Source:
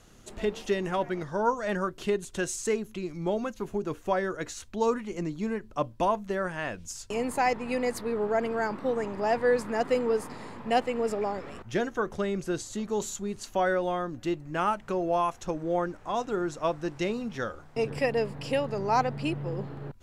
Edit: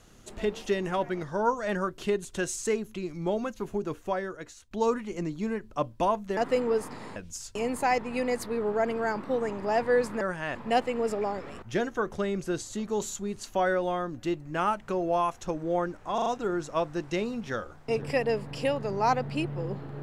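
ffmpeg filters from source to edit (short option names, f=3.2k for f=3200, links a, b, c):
-filter_complex "[0:a]asplit=9[a][b][c][d][e][f][g][h][i];[a]atrim=end=4.71,asetpts=PTS-STARTPTS,afade=t=out:st=3.82:d=0.89:silence=0.177828[j];[b]atrim=start=4.71:end=6.372,asetpts=PTS-STARTPTS,afade=t=in:d=0.004:c=hsin:silence=0.177828[k];[c]atrim=start=9.758:end=10.552[l];[d]atrim=start=6.708:end=9.762[m];[e]atrim=start=6.368:end=6.712[n];[f]atrim=start=10.548:end=16.182[o];[g]atrim=start=16.138:end=16.182[p];[h]atrim=start=16.138:end=16.182[q];[i]atrim=start=16.138[r];[j][k]concat=n=2:v=0:a=1[s];[s][l]acrossfade=d=0.004:c1=hsin:c2=hsin[t];[t][m]acrossfade=d=0.004:c1=hsin:c2=hsin[u];[u][n]acrossfade=d=0.004:c1=hsin:c2=hsin[v];[v][o]acrossfade=d=0.004:c1=hsin:c2=hsin[w];[w][p]acrossfade=d=0.004:c1=hsin:c2=hsin[x];[x][q]acrossfade=d=0.004:c1=hsin:c2=hsin[y];[y][r]acrossfade=d=0.004:c1=hsin:c2=hsin"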